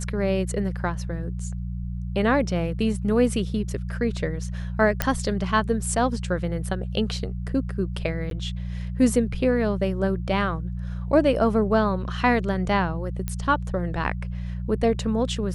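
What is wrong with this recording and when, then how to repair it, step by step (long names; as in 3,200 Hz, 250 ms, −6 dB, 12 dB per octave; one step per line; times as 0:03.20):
mains hum 60 Hz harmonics 3 −30 dBFS
0:05.02: click −5 dBFS
0:08.30–0:08.31: drop-out 12 ms
0:13.28: click −14 dBFS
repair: click removal
hum removal 60 Hz, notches 3
repair the gap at 0:08.30, 12 ms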